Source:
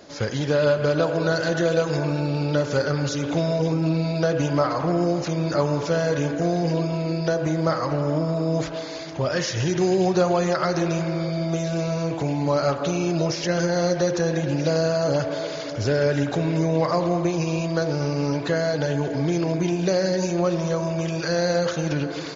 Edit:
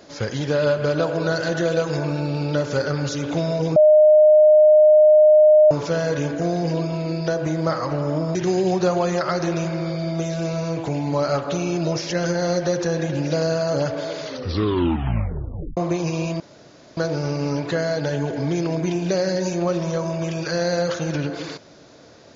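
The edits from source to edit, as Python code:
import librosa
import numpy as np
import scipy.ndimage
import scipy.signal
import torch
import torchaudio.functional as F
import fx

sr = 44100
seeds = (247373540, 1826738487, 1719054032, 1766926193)

y = fx.edit(x, sr, fx.bleep(start_s=3.76, length_s=1.95, hz=612.0, db=-8.5),
    fx.cut(start_s=8.35, length_s=1.34),
    fx.tape_stop(start_s=15.56, length_s=1.55),
    fx.insert_room_tone(at_s=17.74, length_s=0.57), tone=tone)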